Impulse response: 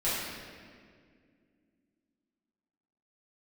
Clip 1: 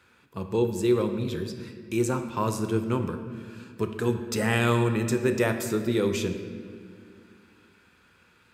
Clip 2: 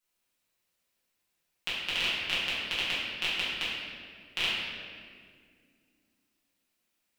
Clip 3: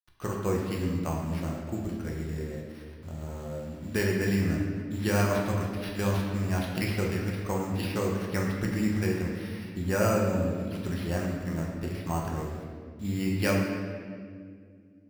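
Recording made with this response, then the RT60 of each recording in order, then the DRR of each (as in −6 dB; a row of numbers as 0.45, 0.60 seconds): 2; non-exponential decay, 2.1 s, 2.1 s; 6.0, −11.5, −2.0 decibels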